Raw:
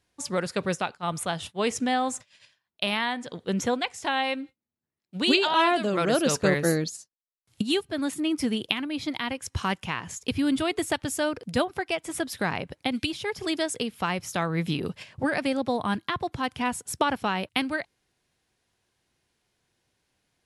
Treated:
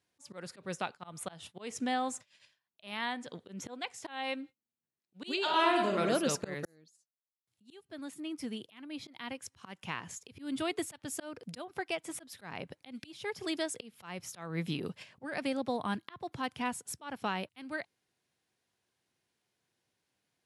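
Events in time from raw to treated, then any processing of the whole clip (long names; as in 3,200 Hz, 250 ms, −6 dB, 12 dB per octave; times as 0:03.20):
0:05.41–0:06.02: thrown reverb, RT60 0.97 s, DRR 2.5 dB
0:06.65–0:10.04: fade in
whole clip: volume swells 228 ms; high-pass filter 110 Hz; level −7 dB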